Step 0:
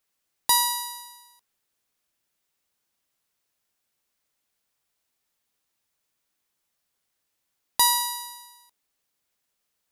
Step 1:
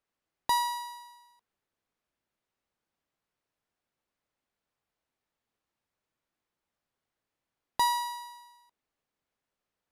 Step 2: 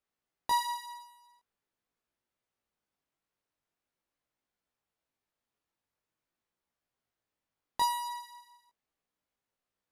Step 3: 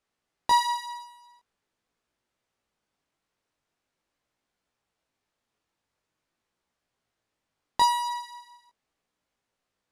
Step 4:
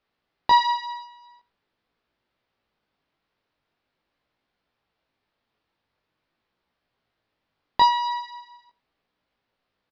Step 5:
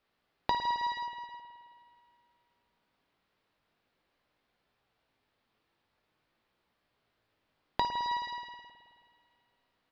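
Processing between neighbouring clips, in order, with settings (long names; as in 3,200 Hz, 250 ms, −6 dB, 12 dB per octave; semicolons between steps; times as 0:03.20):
low-pass filter 1,300 Hz 6 dB per octave
chorus effect 0.44 Hz, delay 16.5 ms, depth 4.6 ms
low-pass filter 8,600 Hz 12 dB per octave; level +7.5 dB
Butterworth low-pass 4,800 Hz 36 dB per octave; single-tap delay 90 ms −21.5 dB; level +4.5 dB
downward compressor 12 to 1, threshold −28 dBFS, peak gain reduction 16 dB; spring reverb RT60 2.3 s, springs 53 ms, chirp 40 ms, DRR 6.5 dB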